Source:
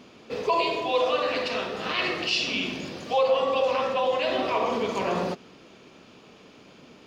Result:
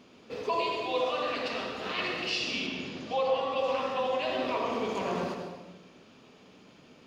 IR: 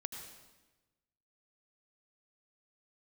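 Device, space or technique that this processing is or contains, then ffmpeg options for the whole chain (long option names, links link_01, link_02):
bathroom: -filter_complex "[1:a]atrim=start_sample=2205[link_01];[0:a][link_01]afir=irnorm=-1:irlink=0,asettb=1/sr,asplit=3[link_02][link_03][link_04];[link_02]atrim=end=2.664[link_05];[link_03]atrim=start=2.66:end=3.59,asetpts=PTS-STARTPTS,afade=type=in:duration=0.004:curve=qsin,afade=type=out:start_time=0.926:duration=0.004:curve=qsin,lowpass=6100[link_06];[link_04]atrim=start=3.586[link_07];[link_05][link_06]acrossfade=duration=0.004:curve1=hsin:curve2=qsin[link_08];[link_08][link_07]acrossfade=duration=0.004:curve1=qsin:curve2=hsin,volume=-3.5dB"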